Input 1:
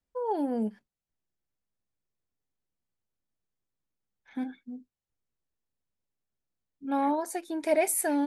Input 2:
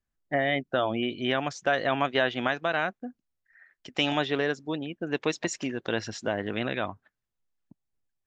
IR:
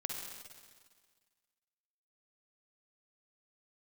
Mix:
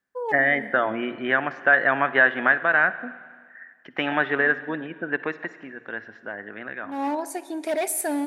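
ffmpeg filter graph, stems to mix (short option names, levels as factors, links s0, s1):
-filter_complex "[0:a]asoftclip=type=hard:threshold=0.0708,volume=1.06,asplit=2[s0][s1];[s1]volume=0.237[s2];[1:a]lowpass=f=1700:t=q:w=4.3,bandreject=f=60:t=h:w=6,bandreject=f=120:t=h:w=6,volume=0.891,afade=t=out:st=4.99:d=0.6:silence=0.316228,asplit=3[s3][s4][s5];[s4]volume=0.299[s6];[s5]apad=whole_len=364469[s7];[s0][s7]sidechaincompress=threshold=0.00794:ratio=8:attack=5.7:release=225[s8];[2:a]atrim=start_sample=2205[s9];[s2][s6]amix=inputs=2:normalize=0[s10];[s10][s9]afir=irnorm=-1:irlink=0[s11];[s8][s3][s11]amix=inputs=3:normalize=0,highpass=160"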